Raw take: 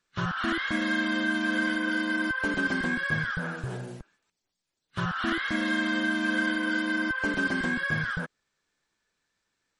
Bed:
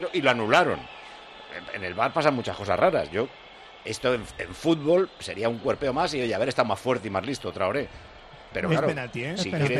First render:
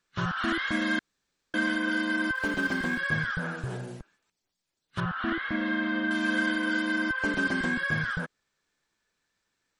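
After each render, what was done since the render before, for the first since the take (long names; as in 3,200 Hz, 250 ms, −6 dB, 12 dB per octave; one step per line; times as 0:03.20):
0:00.99–0:01.54: fill with room tone
0:02.35–0:02.99: mu-law and A-law mismatch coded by A
0:05.00–0:06.11: high-frequency loss of the air 310 metres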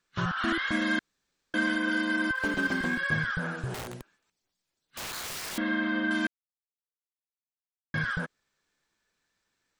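0:03.74–0:05.58: wrap-around overflow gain 32.5 dB
0:06.27–0:07.94: silence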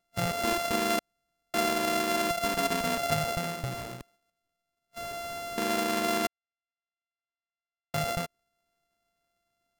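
samples sorted by size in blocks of 64 samples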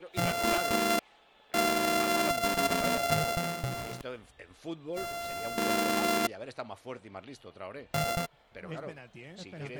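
mix in bed −17 dB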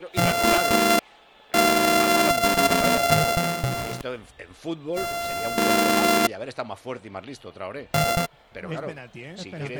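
level +8.5 dB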